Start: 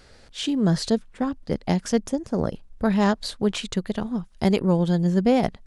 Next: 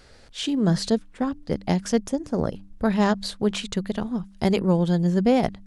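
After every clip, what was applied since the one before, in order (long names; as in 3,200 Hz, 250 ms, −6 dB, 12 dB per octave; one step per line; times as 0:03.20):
hum removal 98.31 Hz, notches 3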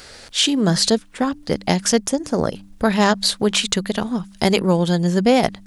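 in parallel at −1 dB: downward compressor, threshold −30 dBFS, peak gain reduction 14.5 dB
on the sum: spectral tilt +2 dB per octave
level +5.5 dB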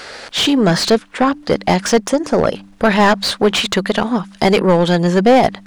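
mid-hump overdrive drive 21 dB, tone 1,600 Hz, clips at −1 dBFS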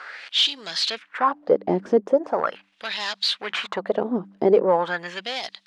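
auto-filter band-pass sine 0.41 Hz 340–4,200 Hz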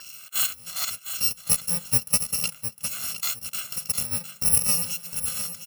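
samples in bit-reversed order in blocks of 128 samples
repeating echo 707 ms, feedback 23%, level −9.5 dB
level −4 dB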